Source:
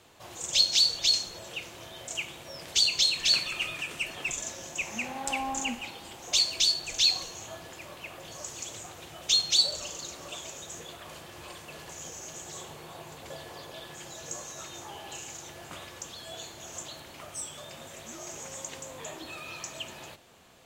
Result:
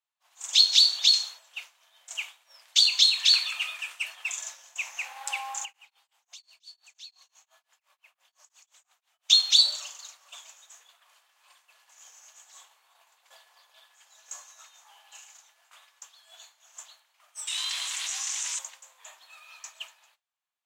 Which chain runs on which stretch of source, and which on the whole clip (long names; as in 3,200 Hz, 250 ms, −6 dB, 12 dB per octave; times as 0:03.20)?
0:05.65–0:09.30: downward compressor, threshold −38 dBFS + tremolo along a rectified sine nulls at 5.8 Hz
0:17.47–0:18.59: flat-topped bell 4,600 Hz +12.5 dB 2.6 octaves + ring modulation 440 Hz + envelope flattener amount 70%
whole clip: dynamic equaliser 3,700 Hz, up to +8 dB, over −41 dBFS, Q 3.5; downward expander −34 dBFS; high-pass filter 860 Hz 24 dB per octave